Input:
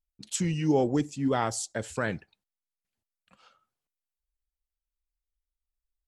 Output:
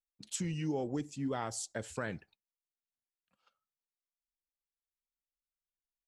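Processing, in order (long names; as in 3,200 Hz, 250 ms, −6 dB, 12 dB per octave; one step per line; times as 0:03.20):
noise gate −56 dBFS, range −14 dB
downward compressor 3 to 1, threshold −27 dBFS, peak gain reduction 6.5 dB
level −5.5 dB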